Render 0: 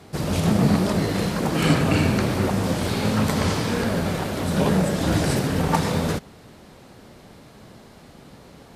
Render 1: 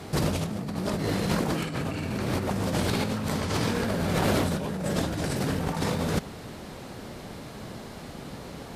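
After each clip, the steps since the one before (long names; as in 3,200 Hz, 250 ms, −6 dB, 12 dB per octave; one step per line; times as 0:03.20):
compressor whose output falls as the input rises −28 dBFS, ratio −1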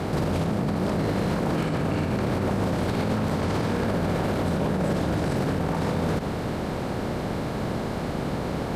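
compressor on every frequency bin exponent 0.6
high-shelf EQ 2,500 Hz −11 dB
brickwall limiter −20.5 dBFS, peak gain reduction 10.5 dB
level +4 dB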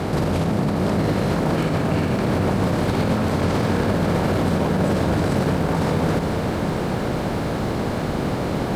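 feedback echo at a low word length 453 ms, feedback 80%, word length 9 bits, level −10.5 dB
level +4 dB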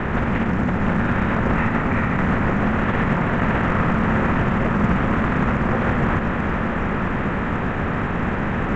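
graphic EQ with 10 bands 125 Hz +7 dB, 250 Hz −4 dB, 2,000 Hz +9 dB
single-sideband voice off tune −390 Hz 190–3,100 Hz
level +2.5 dB
A-law companding 128 kbit/s 16,000 Hz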